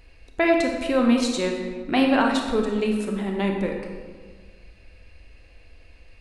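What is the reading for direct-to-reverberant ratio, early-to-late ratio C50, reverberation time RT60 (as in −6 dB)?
1.5 dB, 3.5 dB, 1.5 s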